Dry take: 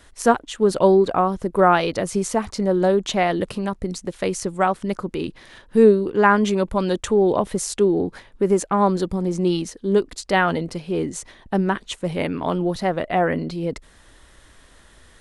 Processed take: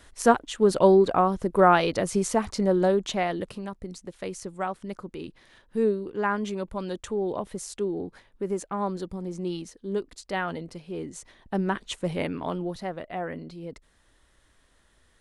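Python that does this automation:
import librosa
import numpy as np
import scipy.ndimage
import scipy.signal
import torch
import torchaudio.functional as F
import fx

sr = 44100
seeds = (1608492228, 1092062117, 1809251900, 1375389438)

y = fx.gain(x, sr, db=fx.line((2.68, -2.5), (3.73, -11.0), (11.03, -11.0), (12.0, -3.0), (13.07, -13.0)))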